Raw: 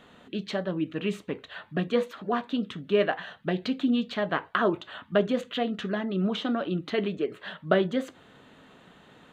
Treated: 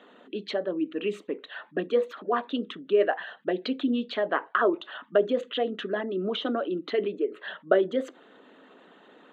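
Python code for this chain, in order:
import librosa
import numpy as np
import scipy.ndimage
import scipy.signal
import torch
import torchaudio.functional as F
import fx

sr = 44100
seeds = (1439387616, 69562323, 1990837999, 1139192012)

y = fx.envelope_sharpen(x, sr, power=1.5)
y = scipy.signal.sosfilt(scipy.signal.butter(4, 250.0, 'highpass', fs=sr, output='sos'), y)
y = y * librosa.db_to_amplitude(1.5)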